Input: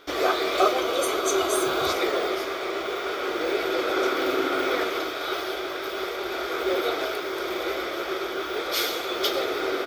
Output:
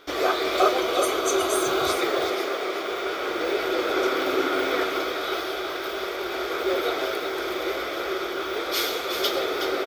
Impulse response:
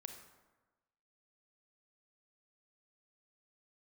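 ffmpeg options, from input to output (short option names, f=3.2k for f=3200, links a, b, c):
-filter_complex "[0:a]asettb=1/sr,asplit=3[a][b][c];[a]atrim=end=2.004[d];[b]atrim=start=2:end=2.91,asetpts=PTS-STARTPTS,afade=t=in:d=0.004:c=qsin,afade=t=out:st=0.906:d=0.004:c=qsin,highpass=170[e];[c]atrim=start=2.906[f];[d][e]acrossfade=d=0.004:c1=hsin:c2=qsin[g];[g][f]acrossfade=d=0.004:c1=qsin:c2=hsin,aecho=1:1:369:0.422"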